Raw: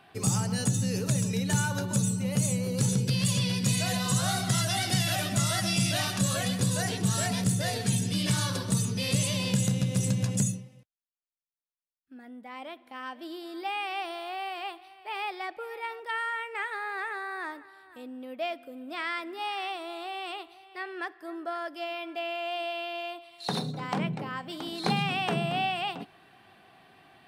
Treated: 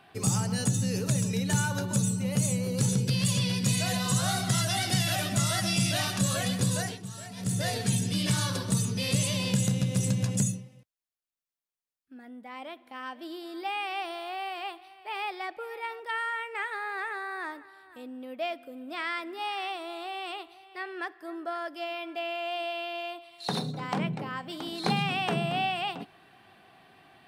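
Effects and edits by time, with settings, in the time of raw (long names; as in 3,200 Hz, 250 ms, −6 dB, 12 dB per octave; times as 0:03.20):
0:06.76–0:07.60: duck −13.5 dB, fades 0.25 s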